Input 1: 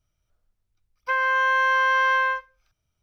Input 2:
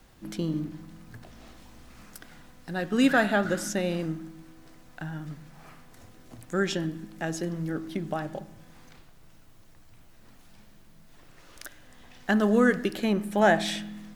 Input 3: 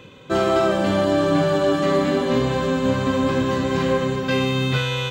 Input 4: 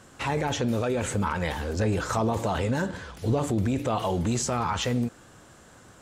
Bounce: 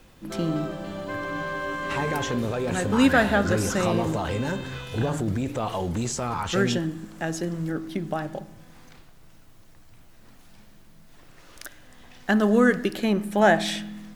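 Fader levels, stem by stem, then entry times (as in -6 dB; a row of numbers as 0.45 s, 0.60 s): -12.5 dB, +2.5 dB, -15.5 dB, -1.5 dB; 0.00 s, 0.00 s, 0.00 s, 1.70 s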